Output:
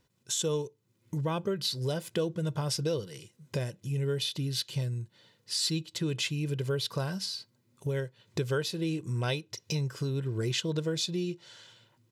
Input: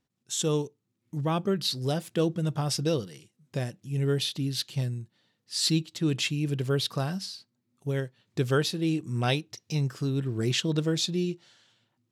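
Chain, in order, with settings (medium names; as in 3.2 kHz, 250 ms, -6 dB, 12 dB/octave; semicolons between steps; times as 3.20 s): comb 2 ms, depth 47%; compression 2.5:1, threshold -43 dBFS, peak gain reduction 16 dB; trim +8.5 dB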